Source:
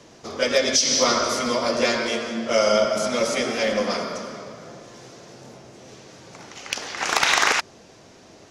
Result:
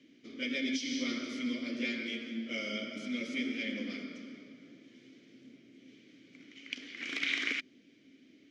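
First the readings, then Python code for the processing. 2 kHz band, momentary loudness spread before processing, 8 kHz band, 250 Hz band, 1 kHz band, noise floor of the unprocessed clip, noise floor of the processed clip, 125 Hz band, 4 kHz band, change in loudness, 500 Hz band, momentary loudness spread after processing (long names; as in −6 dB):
−11.5 dB, 18 LU, −25.0 dB, −6.5 dB, −29.0 dB, −49 dBFS, −62 dBFS, −15.5 dB, −14.5 dB, −14.5 dB, −23.5 dB, 18 LU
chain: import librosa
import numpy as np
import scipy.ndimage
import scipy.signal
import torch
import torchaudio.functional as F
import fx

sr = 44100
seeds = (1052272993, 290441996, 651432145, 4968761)

y = fx.vowel_filter(x, sr, vowel='i')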